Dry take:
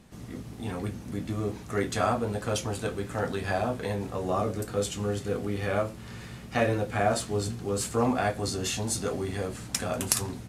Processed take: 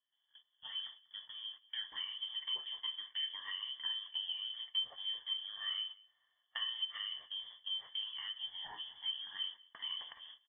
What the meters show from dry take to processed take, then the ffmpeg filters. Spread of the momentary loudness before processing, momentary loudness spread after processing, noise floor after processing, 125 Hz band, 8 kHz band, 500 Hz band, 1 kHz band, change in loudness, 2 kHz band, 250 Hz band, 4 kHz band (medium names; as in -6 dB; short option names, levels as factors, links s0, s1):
8 LU, 8 LU, -81 dBFS, under -40 dB, under -40 dB, under -40 dB, -25.0 dB, -10.0 dB, -14.5 dB, under -40 dB, +4.5 dB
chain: -filter_complex "[0:a]agate=range=0.0355:threshold=0.02:ratio=16:detection=peak,acompressor=threshold=0.0158:ratio=12,asplit=3[s0][s1][s2];[s0]bandpass=f=530:t=q:w=8,volume=1[s3];[s1]bandpass=f=1840:t=q:w=8,volume=0.501[s4];[s2]bandpass=f=2480:t=q:w=8,volume=0.355[s5];[s3][s4][s5]amix=inputs=3:normalize=0,aecho=1:1:192:0.0668,lowpass=f=3100:t=q:w=0.5098,lowpass=f=3100:t=q:w=0.6013,lowpass=f=3100:t=q:w=0.9,lowpass=f=3100:t=q:w=2.563,afreqshift=-3600,volume=2.51"